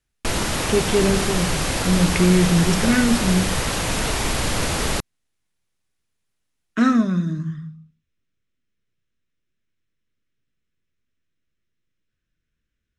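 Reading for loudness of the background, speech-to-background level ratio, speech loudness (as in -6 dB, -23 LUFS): -23.0 LUFS, 2.5 dB, -20.5 LUFS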